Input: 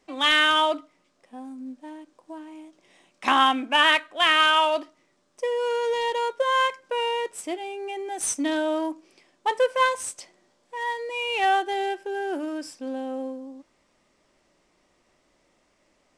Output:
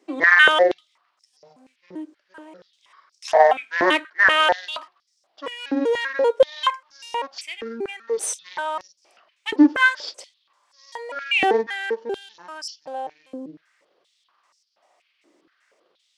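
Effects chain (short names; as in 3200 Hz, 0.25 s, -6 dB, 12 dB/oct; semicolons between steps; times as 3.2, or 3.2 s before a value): trilling pitch shifter -9.5 st, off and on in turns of 0.195 s; stepped high-pass 4.2 Hz 320–5300 Hz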